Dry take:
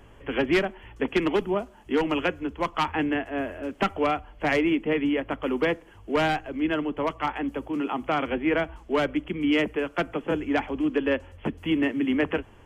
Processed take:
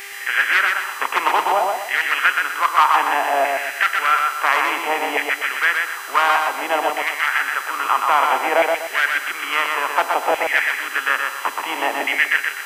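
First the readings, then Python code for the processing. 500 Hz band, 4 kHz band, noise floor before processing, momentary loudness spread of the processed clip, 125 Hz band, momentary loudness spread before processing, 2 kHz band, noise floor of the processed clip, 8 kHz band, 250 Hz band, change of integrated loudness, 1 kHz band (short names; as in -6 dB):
+1.5 dB, +10.0 dB, -51 dBFS, 5 LU, under -20 dB, 6 LU, +14.0 dB, -31 dBFS, n/a, -13.0 dB, +8.0 dB, +13.0 dB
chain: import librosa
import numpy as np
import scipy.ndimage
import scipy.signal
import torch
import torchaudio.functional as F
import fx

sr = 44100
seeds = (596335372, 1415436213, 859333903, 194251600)

p1 = fx.bin_compress(x, sr, power=0.6)
p2 = fx.filter_lfo_highpass(p1, sr, shape='saw_down', hz=0.58, low_hz=720.0, high_hz=2100.0, q=4.1)
p3 = fx.dmg_buzz(p2, sr, base_hz=400.0, harmonics=37, level_db=-41.0, tilt_db=-1, odd_only=False)
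p4 = p3 + fx.echo_feedback(p3, sr, ms=124, feedback_pct=34, wet_db=-4.0, dry=0)
y = p4 * librosa.db_to_amplitude(1.5)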